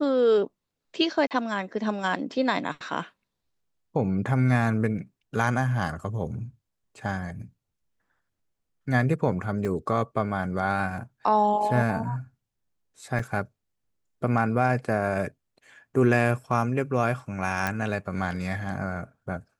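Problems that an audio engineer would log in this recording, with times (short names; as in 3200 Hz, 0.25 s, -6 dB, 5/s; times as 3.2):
1.27–1.31 gap 38 ms
9.65 gap 2.4 ms
13.19 gap 4.4 ms
17.67 pop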